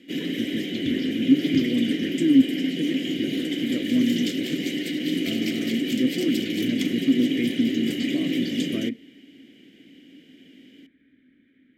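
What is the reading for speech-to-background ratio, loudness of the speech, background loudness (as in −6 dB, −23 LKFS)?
1.0 dB, −26.0 LKFS, −27.0 LKFS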